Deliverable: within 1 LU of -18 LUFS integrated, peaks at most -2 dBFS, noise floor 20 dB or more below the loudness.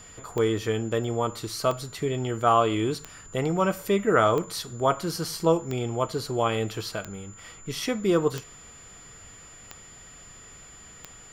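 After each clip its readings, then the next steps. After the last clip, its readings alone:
clicks found 9; steady tone 7.1 kHz; tone level -47 dBFS; loudness -26.5 LUFS; peak level -8.0 dBFS; loudness target -18.0 LUFS
-> de-click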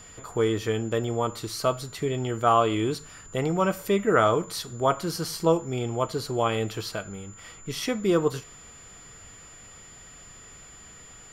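clicks found 0; steady tone 7.1 kHz; tone level -47 dBFS
-> band-stop 7.1 kHz, Q 30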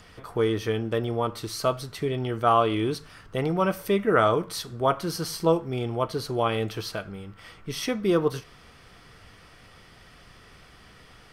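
steady tone not found; loudness -26.5 LUFS; peak level -8.0 dBFS; loudness target -18.0 LUFS
-> trim +8.5 dB; peak limiter -2 dBFS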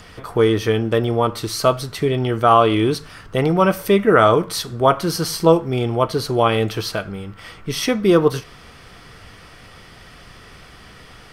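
loudness -18.0 LUFS; peak level -2.0 dBFS; noise floor -44 dBFS

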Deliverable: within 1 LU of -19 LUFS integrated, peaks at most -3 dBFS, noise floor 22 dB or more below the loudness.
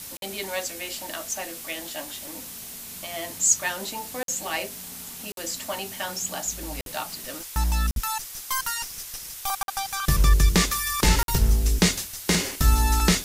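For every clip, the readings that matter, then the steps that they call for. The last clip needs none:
dropouts 7; longest dropout 52 ms; noise floor -39 dBFS; noise floor target -48 dBFS; loudness -26.0 LUFS; peak level -7.0 dBFS; loudness target -19.0 LUFS
-> interpolate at 0.17/4.23/5.32/6.81/7.91/9.63/11.23 s, 52 ms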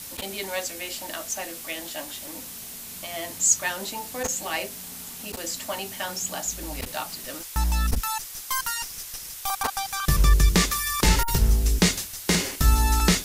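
dropouts 0; noise floor -39 dBFS; noise floor target -48 dBFS
-> noise reduction 9 dB, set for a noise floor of -39 dBFS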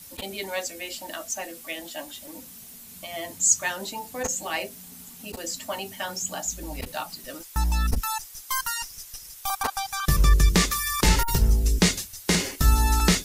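noise floor -45 dBFS; noise floor target -48 dBFS
-> noise reduction 6 dB, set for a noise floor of -45 dBFS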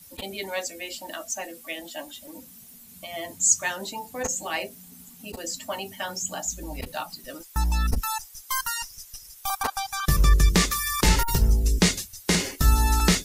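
noise floor -49 dBFS; loudness -25.5 LUFS; peak level -7.0 dBFS; loudness target -19.0 LUFS
-> trim +6.5 dB; peak limiter -3 dBFS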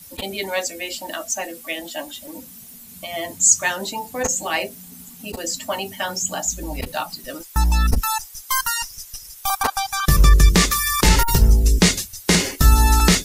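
loudness -19.5 LUFS; peak level -3.0 dBFS; noise floor -42 dBFS

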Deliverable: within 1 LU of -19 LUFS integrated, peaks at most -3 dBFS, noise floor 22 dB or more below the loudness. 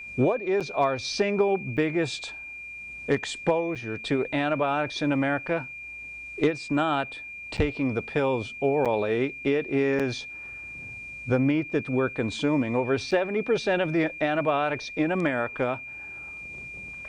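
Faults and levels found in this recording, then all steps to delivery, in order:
dropouts 7; longest dropout 6.8 ms; steady tone 2.4 kHz; tone level -37 dBFS; loudness -26.5 LUFS; peak level -12.0 dBFS; loudness target -19.0 LUFS
-> interpolate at 0.60/1.77/3.75/7.57/8.85/9.99/13.11 s, 6.8 ms; band-stop 2.4 kHz, Q 30; trim +7.5 dB

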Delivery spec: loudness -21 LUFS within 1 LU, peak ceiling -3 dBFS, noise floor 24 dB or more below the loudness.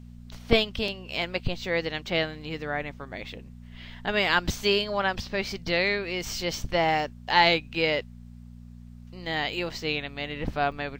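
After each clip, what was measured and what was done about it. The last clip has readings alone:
dropouts 2; longest dropout 2.6 ms; hum 60 Hz; highest harmonic 240 Hz; hum level -42 dBFS; loudness -27.0 LUFS; peak level -3.5 dBFS; loudness target -21.0 LUFS
-> interpolate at 0.88/10.72 s, 2.6 ms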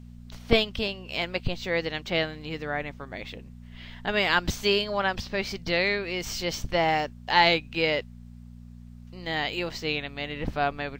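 dropouts 0; hum 60 Hz; highest harmonic 240 Hz; hum level -42 dBFS
-> de-hum 60 Hz, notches 4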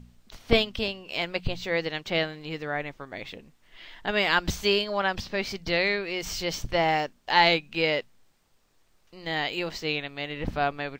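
hum not found; loudness -27.0 LUFS; peak level -4.0 dBFS; loudness target -21.0 LUFS
-> trim +6 dB; peak limiter -3 dBFS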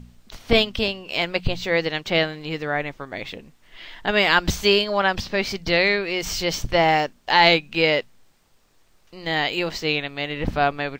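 loudness -21.0 LUFS; peak level -3.0 dBFS; noise floor -59 dBFS

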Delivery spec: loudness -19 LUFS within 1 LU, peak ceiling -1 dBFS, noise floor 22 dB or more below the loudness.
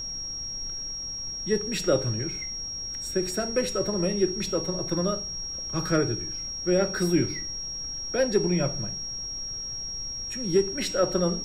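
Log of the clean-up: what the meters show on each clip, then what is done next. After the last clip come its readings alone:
steady tone 5.6 kHz; tone level -32 dBFS; noise floor -35 dBFS; noise floor target -50 dBFS; loudness -27.5 LUFS; peak level -10.5 dBFS; loudness target -19.0 LUFS
-> band-stop 5.6 kHz, Q 30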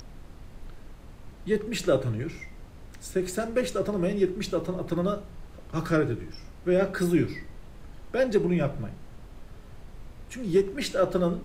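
steady tone not found; noise floor -47 dBFS; noise floor target -50 dBFS
-> noise print and reduce 6 dB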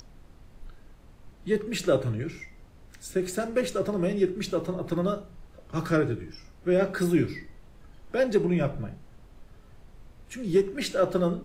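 noise floor -53 dBFS; loudness -28.0 LUFS; peak level -11.5 dBFS; loudness target -19.0 LUFS
-> trim +9 dB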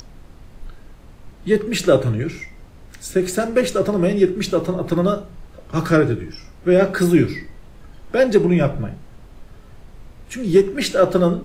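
loudness -19.0 LUFS; peak level -2.5 dBFS; noise floor -44 dBFS

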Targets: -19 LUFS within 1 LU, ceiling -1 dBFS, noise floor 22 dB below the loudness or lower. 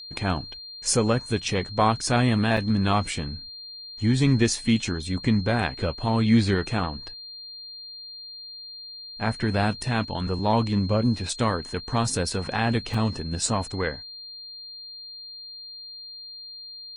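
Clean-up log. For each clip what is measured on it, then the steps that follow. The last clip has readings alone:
dropouts 2; longest dropout 3.8 ms; steady tone 4.2 kHz; tone level -38 dBFS; loudness -24.5 LUFS; peak level -8.5 dBFS; loudness target -19.0 LUFS
-> interpolate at 2.57/12.94 s, 3.8 ms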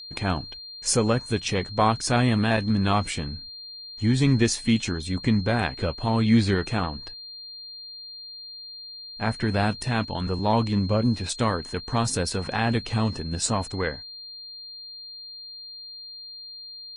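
dropouts 0; steady tone 4.2 kHz; tone level -38 dBFS
-> band-stop 4.2 kHz, Q 30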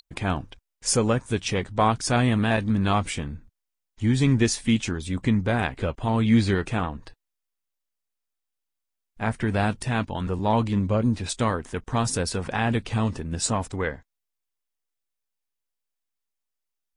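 steady tone not found; loudness -25.0 LUFS; peak level -8.5 dBFS; loudness target -19.0 LUFS
-> trim +6 dB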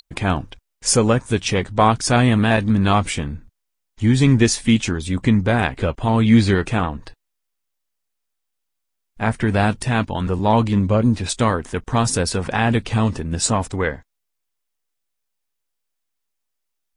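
loudness -19.0 LUFS; peak level -2.5 dBFS; noise floor -77 dBFS

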